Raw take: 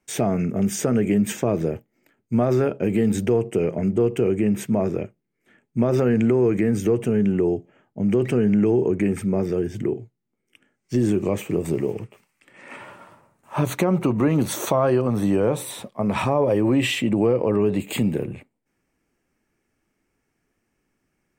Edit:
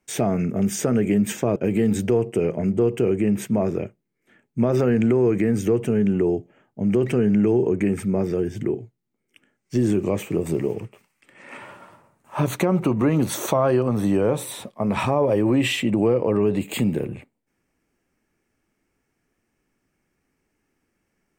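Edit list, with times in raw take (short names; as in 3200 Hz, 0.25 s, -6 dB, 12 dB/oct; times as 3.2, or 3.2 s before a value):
1.56–2.75 cut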